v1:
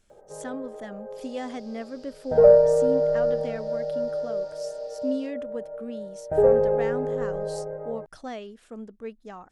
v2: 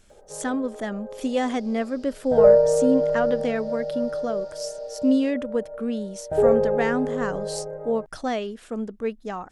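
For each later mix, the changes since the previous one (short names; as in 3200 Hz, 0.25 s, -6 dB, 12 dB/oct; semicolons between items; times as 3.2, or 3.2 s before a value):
speech +9.5 dB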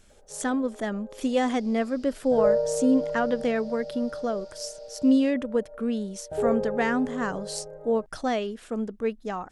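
first sound -8.0 dB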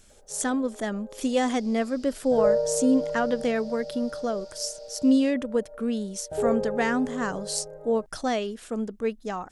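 master: add tone controls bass 0 dB, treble +6 dB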